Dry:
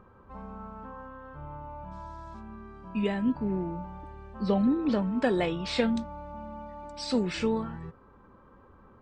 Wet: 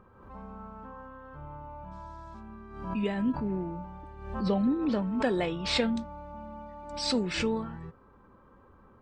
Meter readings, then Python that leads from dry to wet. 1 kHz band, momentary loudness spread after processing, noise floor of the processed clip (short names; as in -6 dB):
-0.5 dB, 18 LU, -58 dBFS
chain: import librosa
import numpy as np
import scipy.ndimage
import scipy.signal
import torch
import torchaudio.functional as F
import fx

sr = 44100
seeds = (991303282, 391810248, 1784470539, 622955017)

y = fx.pre_swell(x, sr, db_per_s=65.0)
y = F.gain(torch.from_numpy(y), -2.0).numpy()